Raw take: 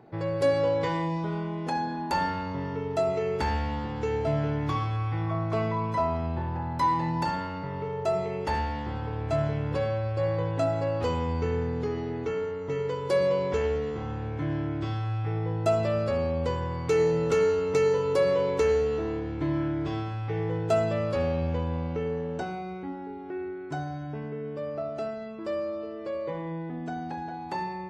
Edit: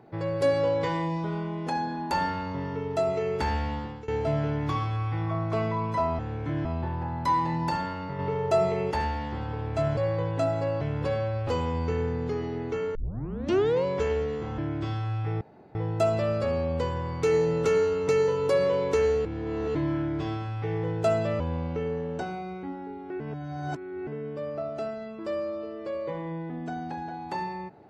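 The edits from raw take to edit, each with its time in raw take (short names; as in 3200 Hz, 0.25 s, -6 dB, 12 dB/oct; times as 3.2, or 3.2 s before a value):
3.63–4.08 fade out equal-power, to -20 dB
7.73–8.45 gain +4 dB
9.51–10.17 move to 11.01
12.49 tape start 0.90 s
14.12–14.58 move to 6.19
15.41 insert room tone 0.34 s
18.91–19.41 reverse
21.06–21.6 cut
23.4–24.27 reverse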